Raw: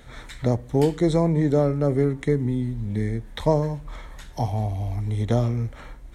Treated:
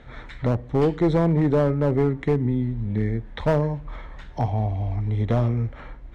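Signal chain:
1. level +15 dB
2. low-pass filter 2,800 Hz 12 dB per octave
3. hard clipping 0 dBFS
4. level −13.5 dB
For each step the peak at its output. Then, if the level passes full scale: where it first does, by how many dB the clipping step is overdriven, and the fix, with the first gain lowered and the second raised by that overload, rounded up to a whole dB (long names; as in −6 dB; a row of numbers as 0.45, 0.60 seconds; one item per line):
+8.5, +8.5, 0.0, −13.5 dBFS
step 1, 8.5 dB
step 1 +6 dB, step 4 −4.5 dB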